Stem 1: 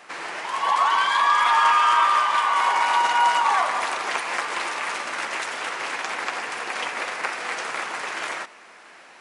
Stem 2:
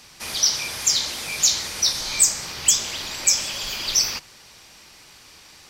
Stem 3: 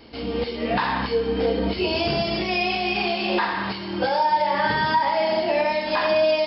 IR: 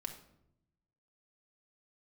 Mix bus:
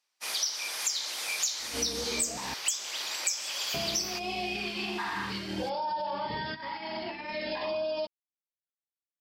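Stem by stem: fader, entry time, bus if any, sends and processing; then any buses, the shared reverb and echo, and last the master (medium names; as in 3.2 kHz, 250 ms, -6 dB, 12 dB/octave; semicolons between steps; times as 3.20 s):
mute
+1.0 dB, 0.00 s, no send, high-pass 510 Hz 12 dB/octave
+1.5 dB, 1.60 s, muted 2.54–3.74 s, no send, hum notches 50/100/150/200/250/300/350 Hz; peak limiter -21.5 dBFS, peak gain reduction 10 dB; LFO notch sine 0.51 Hz 530–2100 Hz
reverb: none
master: expander -27 dBFS; compression 4:1, threshold -30 dBFS, peak gain reduction 16.5 dB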